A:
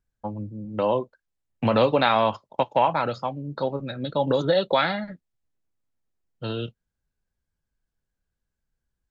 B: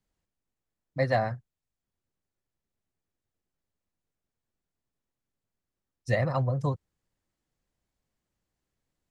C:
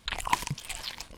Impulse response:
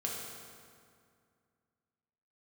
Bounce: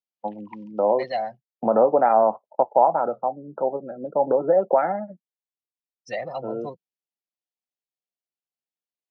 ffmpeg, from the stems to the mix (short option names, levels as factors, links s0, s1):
-filter_complex "[0:a]lowpass=f=1500:w=0.5412,lowpass=f=1500:w=1.3066,volume=1.33[s0];[1:a]crystalizer=i=4:c=0,asoftclip=type=tanh:threshold=0.075,volume=1[s1];[2:a]equalizer=f=1400:w=0.49:g=8,adelay=200,volume=0.112[s2];[s0][s1][s2]amix=inputs=3:normalize=0,afftdn=nr=21:nf=-34,highpass=f=220:w=0.5412,highpass=f=220:w=1.3066,equalizer=f=270:t=q:w=4:g=-7,equalizer=f=730:t=q:w=4:g=7,equalizer=f=1100:t=q:w=4:g=-9,equalizer=f=1600:t=q:w=4:g=-8,equalizer=f=2800:t=q:w=4:g=5,lowpass=f=5400:w=0.5412,lowpass=f=5400:w=1.3066"